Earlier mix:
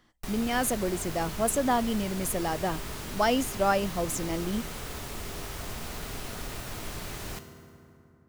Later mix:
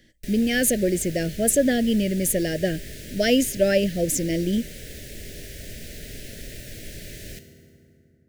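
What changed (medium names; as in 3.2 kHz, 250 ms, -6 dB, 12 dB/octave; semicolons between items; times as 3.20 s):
speech +8.5 dB; master: add elliptic band-stop 600–1700 Hz, stop band 80 dB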